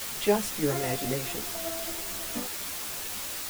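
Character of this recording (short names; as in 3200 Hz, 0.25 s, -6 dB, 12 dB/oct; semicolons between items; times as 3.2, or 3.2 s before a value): tremolo saw down 4.8 Hz, depth 55%; a quantiser's noise floor 6-bit, dither triangular; a shimmering, thickened sound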